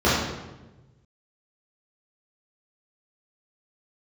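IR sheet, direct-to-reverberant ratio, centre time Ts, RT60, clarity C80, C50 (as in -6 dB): -11.5 dB, 77 ms, 1.1 s, 3.0 dB, -0.5 dB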